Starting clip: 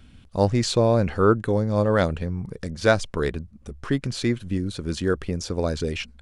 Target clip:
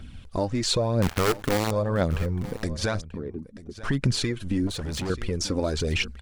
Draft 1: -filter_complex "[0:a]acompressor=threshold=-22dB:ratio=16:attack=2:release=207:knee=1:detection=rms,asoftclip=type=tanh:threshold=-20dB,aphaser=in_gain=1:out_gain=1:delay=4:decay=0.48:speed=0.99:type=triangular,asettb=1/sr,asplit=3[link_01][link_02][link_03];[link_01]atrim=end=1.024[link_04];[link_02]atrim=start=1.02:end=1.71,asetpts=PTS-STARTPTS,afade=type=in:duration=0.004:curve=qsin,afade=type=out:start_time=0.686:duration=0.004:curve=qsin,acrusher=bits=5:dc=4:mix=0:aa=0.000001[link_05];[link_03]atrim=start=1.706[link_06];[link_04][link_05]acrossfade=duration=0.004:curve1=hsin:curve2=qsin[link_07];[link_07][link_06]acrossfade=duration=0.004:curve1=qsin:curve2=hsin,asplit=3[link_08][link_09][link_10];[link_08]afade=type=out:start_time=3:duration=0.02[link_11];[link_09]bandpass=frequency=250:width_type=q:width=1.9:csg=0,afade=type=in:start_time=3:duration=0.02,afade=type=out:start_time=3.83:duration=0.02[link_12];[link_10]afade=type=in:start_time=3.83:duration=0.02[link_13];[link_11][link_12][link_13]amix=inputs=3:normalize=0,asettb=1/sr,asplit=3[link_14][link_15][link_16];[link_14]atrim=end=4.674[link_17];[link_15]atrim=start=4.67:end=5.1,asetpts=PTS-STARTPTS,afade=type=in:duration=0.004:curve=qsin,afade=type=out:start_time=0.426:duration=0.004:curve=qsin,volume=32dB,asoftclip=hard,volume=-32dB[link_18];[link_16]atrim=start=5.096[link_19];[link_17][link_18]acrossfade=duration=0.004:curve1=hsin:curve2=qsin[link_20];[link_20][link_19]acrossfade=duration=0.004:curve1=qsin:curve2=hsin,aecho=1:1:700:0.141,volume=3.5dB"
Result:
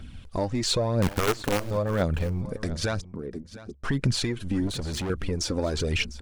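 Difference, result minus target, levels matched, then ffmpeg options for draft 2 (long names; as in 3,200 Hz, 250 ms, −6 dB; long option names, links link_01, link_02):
soft clipping: distortion +20 dB; echo 236 ms early
-filter_complex "[0:a]acompressor=threshold=-22dB:ratio=16:attack=2:release=207:knee=1:detection=rms,asoftclip=type=tanh:threshold=-9dB,aphaser=in_gain=1:out_gain=1:delay=4:decay=0.48:speed=0.99:type=triangular,asettb=1/sr,asplit=3[link_01][link_02][link_03];[link_01]atrim=end=1.024[link_04];[link_02]atrim=start=1.02:end=1.71,asetpts=PTS-STARTPTS,afade=type=in:duration=0.004:curve=qsin,afade=type=out:start_time=0.686:duration=0.004:curve=qsin,acrusher=bits=5:dc=4:mix=0:aa=0.000001[link_05];[link_03]atrim=start=1.706[link_06];[link_04][link_05]acrossfade=duration=0.004:curve1=hsin:curve2=qsin[link_07];[link_07][link_06]acrossfade=duration=0.004:curve1=qsin:curve2=hsin,asplit=3[link_08][link_09][link_10];[link_08]afade=type=out:start_time=3:duration=0.02[link_11];[link_09]bandpass=frequency=250:width_type=q:width=1.9:csg=0,afade=type=in:start_time=3:duration=0.02,afade=type=out:start_time=3.83:duration=0.02[link_12];[link_10]afade=type=in:start_time=3.83:duration=0.02[link_13];[link_11][link_12][link_13]amix=inputs=3:normalize=0,asettb=1/sr,asplit=3[link_14][link_15][link_16];[link_14]atrim=end=4.674[link_17];[link_15]atrim=start=4.67:end=5.1,asetpts=PTS-STARTPTS,afade=type=in:duration=0.004:curve=qsin,afade=type=out:start_time=0.426:duration=0.004:curve=qsin,volume=32dB,asoftclip=hard,volume=-32dB[link_18];[link_16]atrim=start=5.096[link_19];[link_17][link_18]acrossfade=duration=0.004:curve1=hsin:curve2=qsin[link_20];[link_20][link_19]acrossfade=duration=0.004:curve1=qsin:curve2=hsin,aecho=1:1:936:0.141,volume=3.5dB"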